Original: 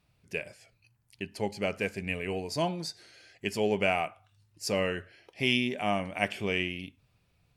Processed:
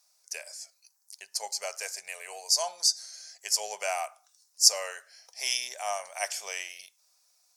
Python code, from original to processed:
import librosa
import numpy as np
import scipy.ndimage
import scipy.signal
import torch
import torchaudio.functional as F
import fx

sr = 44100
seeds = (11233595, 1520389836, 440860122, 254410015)

y = scipy.signal.sosfilt(scipy.signal.cheby2(4, 40, 320.0, 'highpass', fs=sr, output='sos'), x)
y = fx.high_shelf_res(y, sr, hz=4100.0, db=13.0, q=3.0)